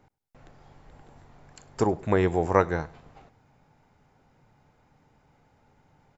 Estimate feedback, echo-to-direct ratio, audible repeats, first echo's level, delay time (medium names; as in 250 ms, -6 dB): 38%, -23.5 dB, 2, -24.0 dB, 101 ms